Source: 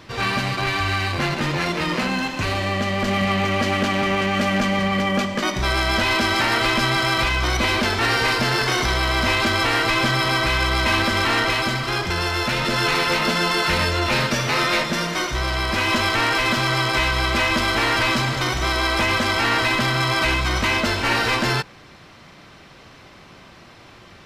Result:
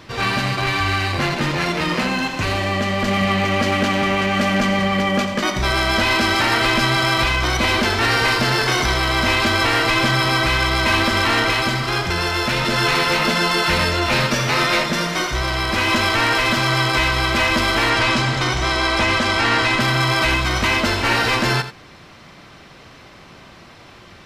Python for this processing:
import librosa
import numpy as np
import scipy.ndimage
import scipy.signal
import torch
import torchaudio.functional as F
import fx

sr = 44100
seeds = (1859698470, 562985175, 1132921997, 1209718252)

y = fx.lowpass(x, sr, hz=9200.0, slope=12, at=(17.9, 19.8))
y = y + 10.0 ** (-12.0 / 20.0) * np.pad(y, (int(86 * sr / 1000.0), 0))[:len(y)]
y = F.gain(torch.from_numpy(y), 2.0).numpy()